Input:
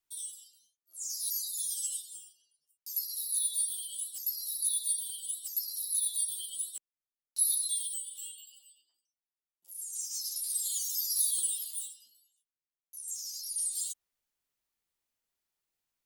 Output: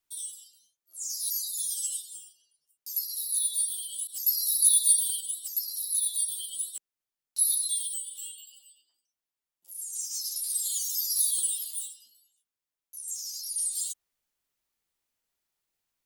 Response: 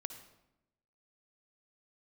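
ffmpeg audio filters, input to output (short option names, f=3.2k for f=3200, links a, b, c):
-filter_complex "[0:a]asettb=1/sr,asplit=3[a][b][c];[a]atrim=end=4.074[d];[b]atrim=start=4.07:end=5.21,asetpts=PTS-STARTPTS,afade=t=in:d=0.004:c=qsin,afade=t=out:st=1.136:d=0.004:c=qsin,adynamicequalizer=threshold=0.00316:dfrequency=2800:dqfactor=0.7:tfrequency=2800:tqfactor=0.7:attack=5:release=100:ratio=0.375:range=3.5:mode=boostabove:tftype=highshelf[e];[c]atrim=start=5.206[f];[d][e]acrossfade=d=0.004:c1=hsin:c2=qsin[g];[g][f]acrossfade=d=0.004:c1=qsin:c2=hsin,volume=3dB"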